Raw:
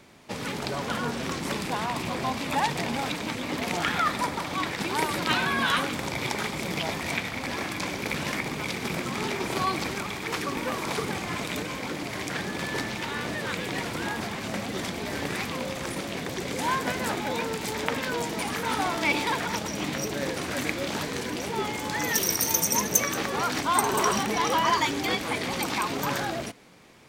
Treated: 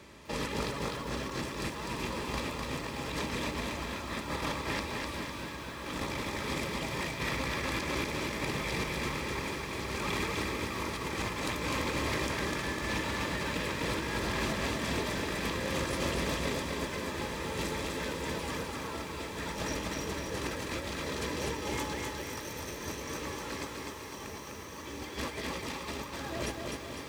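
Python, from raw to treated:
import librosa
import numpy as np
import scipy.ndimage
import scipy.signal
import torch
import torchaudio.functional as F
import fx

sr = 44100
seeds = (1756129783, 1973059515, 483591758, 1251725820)

y = fx.octave_divider(x, sr, octaves=2, level_db=1.0)
y = scipy.signal.sosfilt(scipy.signal.butter(2, 54.0, 'highpass', fs=sr, output='sos'), y)
y = fx.peak_eq(y, sr, hz=200.0, db=-4.0, octaves=0.87)
y = fx.notch_comb(y, sr, f0_hz=740.0)
y = fx.over_compress(y, sr, threshold_db=-35.0, ratio=-0.5)
y = fx.high_shelf(y, sr, hz=11000.0, db=-4.5)
y = fx.echo_diffused(y, sr, ms=1730, feedback_pct=43, wet_db=-6.0)
y = fx.echo_crushed(y, sr, ms=252, feedback_pct=55, bits=9, wet_db=-3)
y = y * librosa.db_to_amplitude(-3.0)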